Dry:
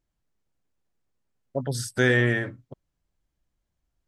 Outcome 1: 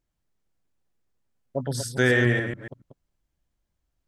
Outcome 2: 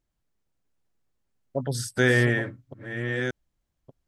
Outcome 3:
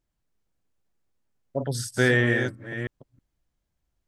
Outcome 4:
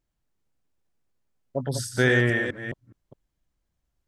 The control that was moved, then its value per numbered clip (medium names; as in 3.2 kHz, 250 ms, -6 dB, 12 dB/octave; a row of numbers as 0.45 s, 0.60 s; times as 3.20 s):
chunks repeated in reverse, time: 141 ms, 662 ms, 319 ms, 209 ms